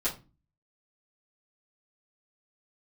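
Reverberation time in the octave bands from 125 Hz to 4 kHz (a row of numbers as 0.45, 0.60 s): 0.60, 0.50, 0.30, 0.30, 0.25, 0.20 s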